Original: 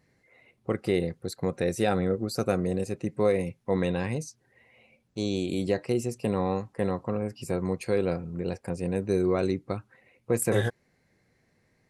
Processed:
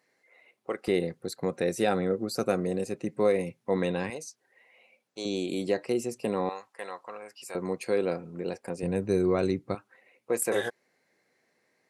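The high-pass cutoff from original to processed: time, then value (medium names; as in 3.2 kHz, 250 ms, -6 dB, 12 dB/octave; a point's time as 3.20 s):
450 Hz
from 0.88 s 180 Hz
from 4.10 s 480 Hz
from 5.25 s 230 Hz
from 6.49 s 930 Hz
from 7.55 s 240 Hz
from 8.83 s 87 Hz
from 9.75 s 360 Hz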